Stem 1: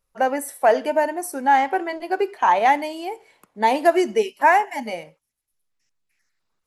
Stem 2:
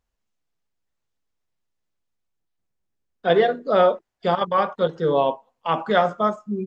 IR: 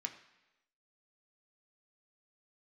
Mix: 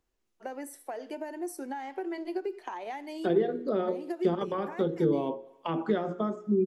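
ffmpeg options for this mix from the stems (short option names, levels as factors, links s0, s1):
-filter_complex "[0:a]dynaudnorm=f=440:g=7:m=3.76,equalizer=f=4700:t=o:w=1.5:g=5,acompressor=threshold=0.112:ratio=10,adelay=250,volume=0.141,asplit=2[s0][s1];[s1]volume=0.211[s2];[1:a]bandreject=f=60:t=h:w=6,bandreject=f=120:t=h:w=6,bandreject=f=180:t=h:w=6,bandreject=f=240:t=h:w=6,bandreject=f=300:t=h:w=6,bandreject=f=360:t=h:w=6,bandreject=f=420:t=h:w=6,bandreject=f=480:t=h:w=6,bandreject=f=540:t=h:w=6,acompressor=threshold=0.1:ratio=3,volume=0.841,asplit=2[s3][s4];[s4]volume=0.266[s5];[2:a]atrim=start_sample=2205[s6];[s2][s5]amix=inputs=2:normalize=0[s7];[s7][s6]afir=irnorm=-1:irlink=0[s8];[s0][s3][s8]amix=inputs=3:normalize=0,equalizer=f=350:t=o:w=0.56:g=13.5,acrossover=split=320[s9][s10];[s10]acompressor=threshold=0.0224:ratio=5[s11];[s9][s11]amix=inputs=2:normalize=0"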